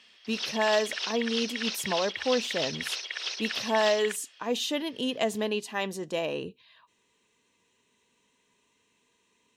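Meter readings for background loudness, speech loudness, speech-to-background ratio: −32.5 LKFS, −30.0 LKFS, 2.5 dB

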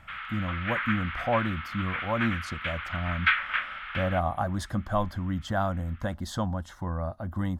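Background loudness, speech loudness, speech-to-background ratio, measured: −31.5 LKFS, −31.5 LKFS, 0.0 dB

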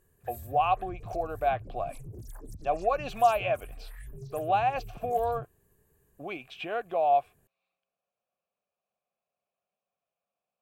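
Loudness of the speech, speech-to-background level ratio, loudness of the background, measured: −29.5 LKFS, 16.5 dB, −46.0 LKFS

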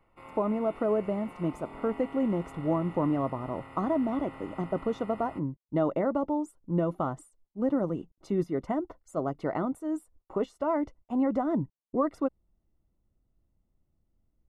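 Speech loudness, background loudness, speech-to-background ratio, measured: −31.0 LKFS, −47.0 LKFS, 16.0 dB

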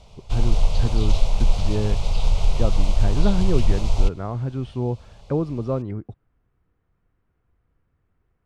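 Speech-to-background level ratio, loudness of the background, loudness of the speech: −2.5 dB, −25.5 LKFS, −28.0 LKFS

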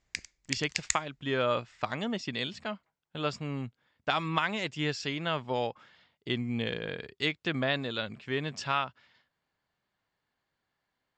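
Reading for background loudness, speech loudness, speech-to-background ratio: −35.5 LKFS, −33.0 LKFS, 2.5 dB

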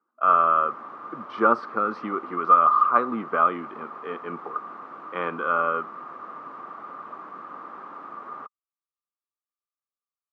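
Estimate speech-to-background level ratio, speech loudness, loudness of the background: 17.5 dB, −22.0 LKFS, −39.5 LKFS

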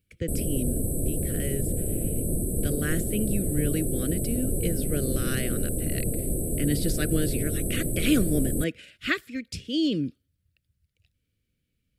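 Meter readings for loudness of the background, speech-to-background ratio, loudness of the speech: −29.0 LKFS, −1.5 dB, −30.5 LKFS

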